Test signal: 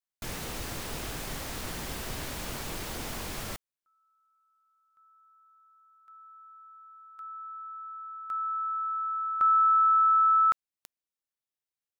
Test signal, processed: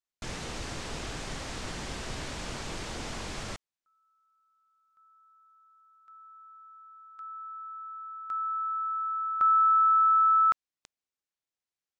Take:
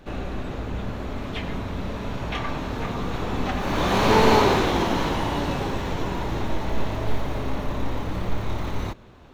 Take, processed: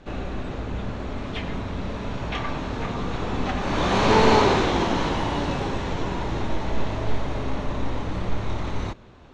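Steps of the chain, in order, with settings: low-pass 8 kHz 24 dB/octave

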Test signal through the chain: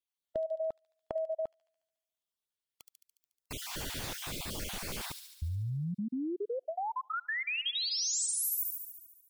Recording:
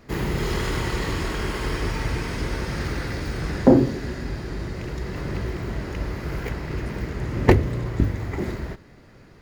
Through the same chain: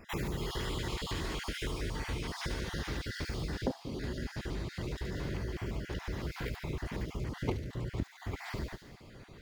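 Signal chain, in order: random holes in the spectrogram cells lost 30%; peaking EQ 3.4 kHz +6 dB 0.47 oct; band-stop 1.3 kHz, Q 29; compression 4:1, threshold -32 dBFS; feedback echo behind a high-pass 72 ms, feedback 66%, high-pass 4.4 kHz, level -3 dB; trim -2 dB

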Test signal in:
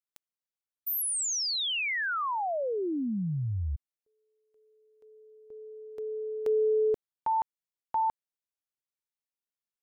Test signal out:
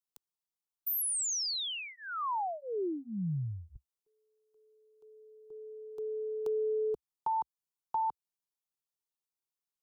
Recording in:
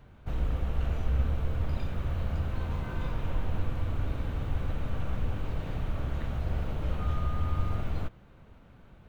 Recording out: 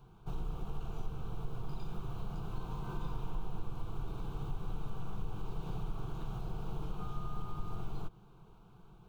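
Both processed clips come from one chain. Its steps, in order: peaking EQ 67 Hz -4 dB 0.4 oct; compression 2.5:1, threshold -31 dBFS; static phaser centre 380 Hz, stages 8

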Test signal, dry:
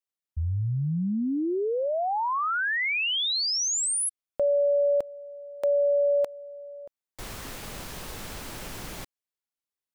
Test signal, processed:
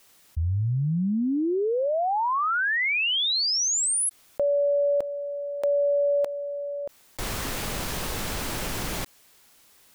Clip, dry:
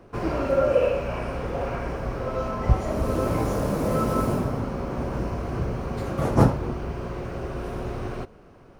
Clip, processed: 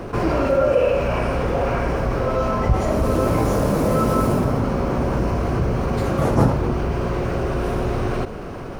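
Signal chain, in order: level flattener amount 50%

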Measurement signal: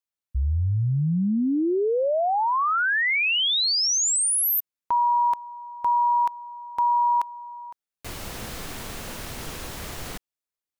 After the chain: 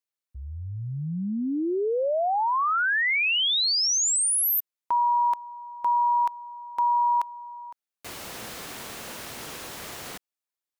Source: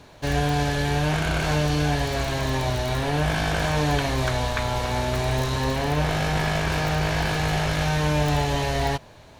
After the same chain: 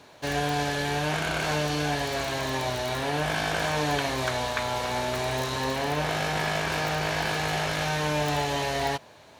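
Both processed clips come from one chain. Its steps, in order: high-pass 300 Hz 6 dB/octave; trim -1 dB

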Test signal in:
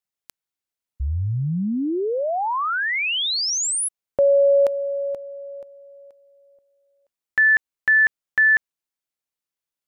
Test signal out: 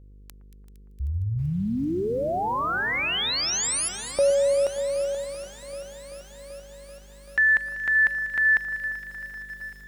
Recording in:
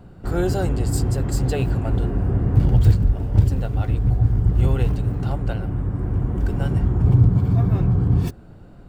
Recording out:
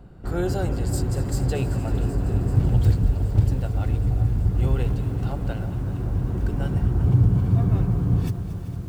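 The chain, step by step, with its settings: mains buzz 50 Hz, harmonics 10, -45 dBFS -9 dB/octave; echo whose repeats swap between lows and highs 115 ms, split 1.6 kHz, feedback 85%, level -12.5 dB; bit-crushed delay 386 ms, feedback 80%, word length 7-bit, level -15 dB; trim -3.5 dB

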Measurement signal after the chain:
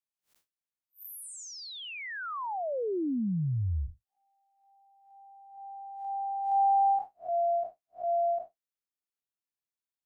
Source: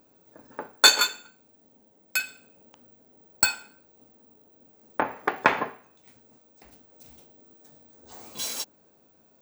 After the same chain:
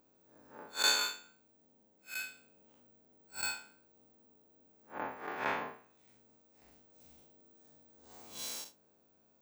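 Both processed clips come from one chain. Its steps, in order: spectral blur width 113 ms; trim -7 dB

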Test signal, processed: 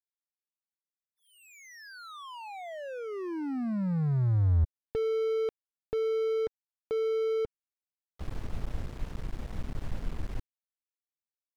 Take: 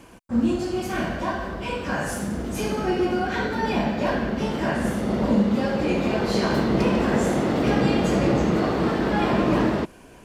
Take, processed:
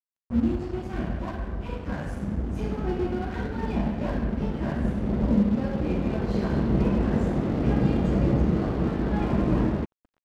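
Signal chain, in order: RIAA curve playback; crossover distortion -30 dBFS; trim -8.5 dB

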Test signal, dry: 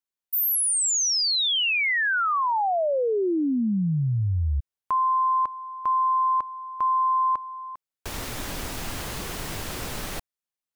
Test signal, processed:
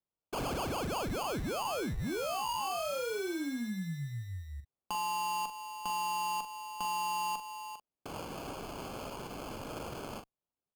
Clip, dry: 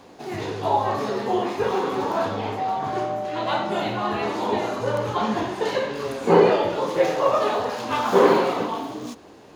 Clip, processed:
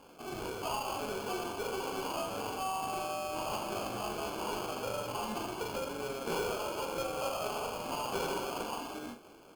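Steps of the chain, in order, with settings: high-pass 290 Hz 6 dB/octave; compression 2.5:1, threshold -27 dBFS; sample-rate reducer 1.9 kHz, jitter 0%; one-sided clip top -27 dBFS; doubling 42 ms -8 dB; trim -7.5 dB

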